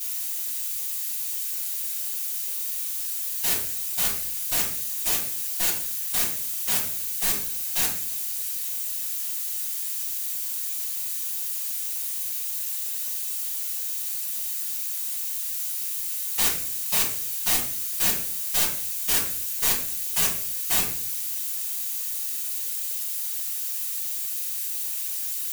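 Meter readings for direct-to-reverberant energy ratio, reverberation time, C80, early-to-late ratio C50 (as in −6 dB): −9.0 dB, 0.55 s, 10.5 dB, 6.5 dB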